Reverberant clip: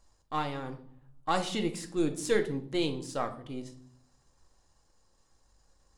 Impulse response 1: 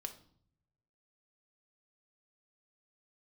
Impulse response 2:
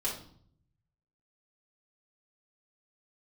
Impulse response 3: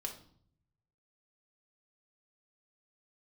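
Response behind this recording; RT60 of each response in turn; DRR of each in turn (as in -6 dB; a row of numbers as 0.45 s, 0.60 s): 1; 0.60 s, 0.60 s, 0.60 s; 5.5 dB, -6.5 dB, 1.5 dB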